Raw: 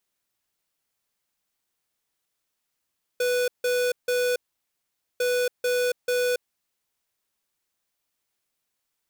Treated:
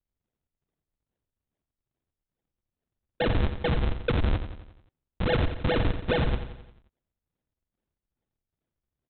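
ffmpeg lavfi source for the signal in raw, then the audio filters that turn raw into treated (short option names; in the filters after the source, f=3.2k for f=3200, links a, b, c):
-f lavfi -i "aevalsrc='0.0668*(2*lt(mod(494*t,1),0.5)-1)*clip(min(mod(mod(t,2),0.44),0.28-mod(mod(t,2),0.44))/0.005,0,1)*lt(mod(t,2),1.32)':d=4:s=44100"
-af "highpass=150,aresample=8000,acrusher=samples=31:mix=1:aa=0.000001:lfo=1:lforange=49.6:lforate=2.4,aresample=44100,aecho=1:1:88|176|264|352|440|528:0.316|0.164|0.0855|0.0445|0.0231|0.012"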